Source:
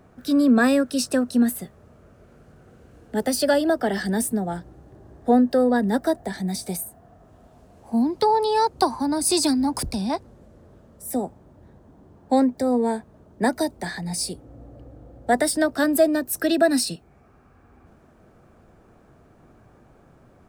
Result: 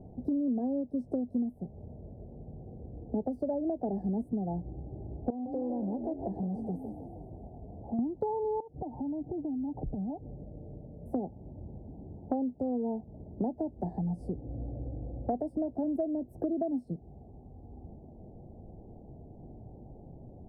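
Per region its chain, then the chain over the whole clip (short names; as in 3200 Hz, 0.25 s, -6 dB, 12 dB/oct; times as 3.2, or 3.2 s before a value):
5.3–7.99 compressor 2:1, threshold -36 dBFS + frequency-shifting echo 0.156 s, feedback 58%, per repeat +39 Hz, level -9 dB + core saturation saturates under 550 Hz
8.6–11.06 steep low-pass 880 Hz 48 dB/oct + comb 6.7 ms, depth 39% + compressor 5:1, threshold -37 dBFS
whole clip: elliptic low-pass 820 Hz, stop band 40 dB; low shelf 240 Hz +9 dB; compressor 6:1, threshold -30 dBFS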